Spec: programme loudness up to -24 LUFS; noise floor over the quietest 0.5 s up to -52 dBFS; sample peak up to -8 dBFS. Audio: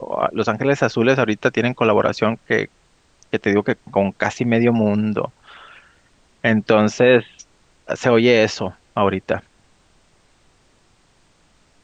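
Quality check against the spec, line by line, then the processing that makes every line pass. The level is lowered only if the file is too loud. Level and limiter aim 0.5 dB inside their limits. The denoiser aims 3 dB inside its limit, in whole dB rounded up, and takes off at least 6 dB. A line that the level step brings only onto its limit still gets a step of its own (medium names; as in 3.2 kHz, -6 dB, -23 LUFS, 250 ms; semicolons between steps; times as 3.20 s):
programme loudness -18.5 LUFS: fail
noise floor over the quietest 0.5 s -58 dBFS: pass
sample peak -1.5 dBFS: fail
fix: trim -6 dB; peak limiter -8.5 dBFS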